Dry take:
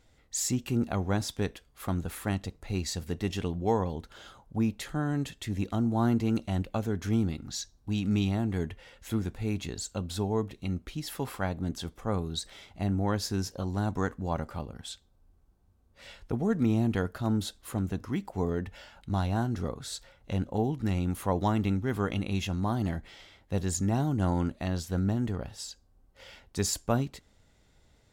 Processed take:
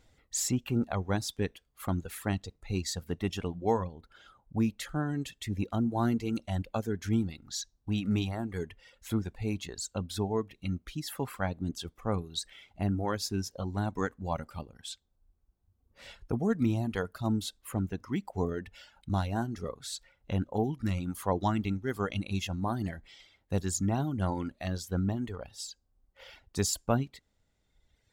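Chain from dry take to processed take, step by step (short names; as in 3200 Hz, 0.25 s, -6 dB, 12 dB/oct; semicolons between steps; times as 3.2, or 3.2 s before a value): 3.87–4.58 high shelf 2500 Hz -10.5 dB; reverb removal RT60 1.7 s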